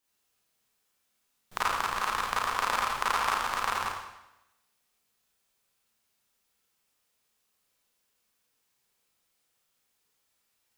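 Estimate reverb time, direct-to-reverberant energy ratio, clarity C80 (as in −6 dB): 0.90 s, −6.5 dB, 2.5 dB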